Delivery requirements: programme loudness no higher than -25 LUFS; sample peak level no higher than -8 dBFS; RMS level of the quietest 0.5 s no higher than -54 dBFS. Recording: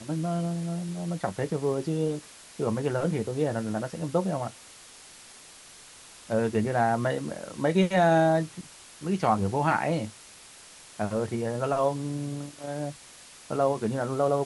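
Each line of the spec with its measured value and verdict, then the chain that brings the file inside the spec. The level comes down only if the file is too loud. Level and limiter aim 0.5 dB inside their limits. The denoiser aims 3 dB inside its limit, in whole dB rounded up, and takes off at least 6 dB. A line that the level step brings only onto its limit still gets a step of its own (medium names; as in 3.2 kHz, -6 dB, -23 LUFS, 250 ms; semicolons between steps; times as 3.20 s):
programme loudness -28.0 LUFS: pass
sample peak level -10.5 dBFS: pass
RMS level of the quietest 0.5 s -50 dBFS: fail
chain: noise reduction 7 dB, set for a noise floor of -50 dBFS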